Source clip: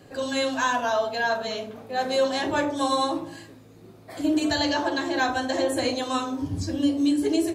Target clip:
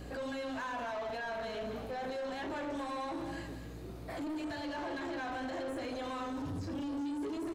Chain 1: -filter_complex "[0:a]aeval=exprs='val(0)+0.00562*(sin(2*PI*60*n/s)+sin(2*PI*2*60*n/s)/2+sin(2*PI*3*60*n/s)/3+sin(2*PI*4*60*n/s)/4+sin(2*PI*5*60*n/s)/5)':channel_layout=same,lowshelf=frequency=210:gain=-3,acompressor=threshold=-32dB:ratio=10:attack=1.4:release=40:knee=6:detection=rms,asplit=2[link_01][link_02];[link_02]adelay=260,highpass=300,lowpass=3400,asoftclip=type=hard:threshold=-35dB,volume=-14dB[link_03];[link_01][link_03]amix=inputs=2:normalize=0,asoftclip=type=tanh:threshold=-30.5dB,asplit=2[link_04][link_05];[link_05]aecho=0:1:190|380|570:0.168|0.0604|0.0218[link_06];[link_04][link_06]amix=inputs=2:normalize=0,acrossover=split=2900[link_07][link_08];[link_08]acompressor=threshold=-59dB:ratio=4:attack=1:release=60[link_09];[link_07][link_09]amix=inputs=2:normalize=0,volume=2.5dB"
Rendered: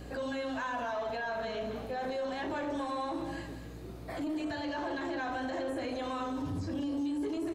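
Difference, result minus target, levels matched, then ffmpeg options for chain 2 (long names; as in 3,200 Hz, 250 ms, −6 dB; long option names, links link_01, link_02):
soft clipping: distortion −8 dB
-filter_complex "[0:a]aeval=exprs='val(0)+0.00562*(sin(2*PI*60*n/s)+sin(2*PI*2*60*n/s)/2+sin(2*PI*3*60*n/s)/3+sin(2*PI*4*60*n/s)/4+sin(2*PI*5*60*n/s)/5)':channel_layout=same,lowshelf=frequency=210:gain=-3,acompressor=threshold=-32dB:ratio=10:attack=1.4:release=40:knee=6:detection=rms,asplit=2[link_01][link_02];[link_02]adelay=260,highpass=300,lowpass=3400,asoftclip=type=hard:threshold=-35dB,volume=-14dB[link_03];[link_01][link_03]amix=inputs=2:normalize=0,asoftclip=type=tanh:threshold=-37.5dB,asplit=2[link_04][link_05];[link_05]aecho=0:1:190|380|570:0.168|0.0604|0.0218[link_06];[link_04][link_06]amix=inputs=2:normalize=0,acrossover=split=2900[link_07][link_08];[link_08]acompressor=threshold=-59dB:ratio=4:attack=1:release=60[link_09];[link_07][link_09]amix=inputs=2:normalize=0,volume=2.5dB"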